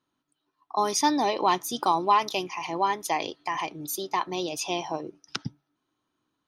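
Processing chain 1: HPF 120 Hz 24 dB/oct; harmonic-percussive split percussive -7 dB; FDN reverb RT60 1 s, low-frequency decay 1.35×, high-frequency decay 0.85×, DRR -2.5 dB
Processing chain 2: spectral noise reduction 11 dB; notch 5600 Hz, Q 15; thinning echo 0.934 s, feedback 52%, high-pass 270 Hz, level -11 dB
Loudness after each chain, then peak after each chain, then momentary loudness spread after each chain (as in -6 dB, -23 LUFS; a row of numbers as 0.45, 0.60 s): -23.0, -27.0 LUFS; -5.5, -10.0 dBFS; 14, 16 LU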